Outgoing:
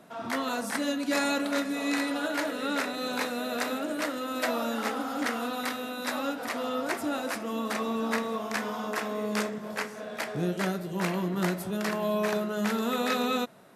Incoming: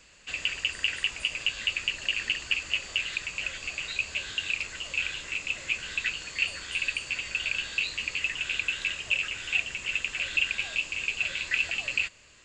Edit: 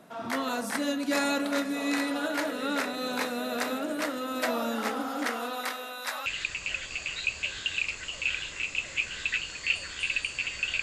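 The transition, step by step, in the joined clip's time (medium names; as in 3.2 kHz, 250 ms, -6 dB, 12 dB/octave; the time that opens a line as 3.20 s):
outgoing
5.11–6.26 s: high-pass 210 Hz -> 1 kHz
6.26 s: go over to incoming from 2.98 s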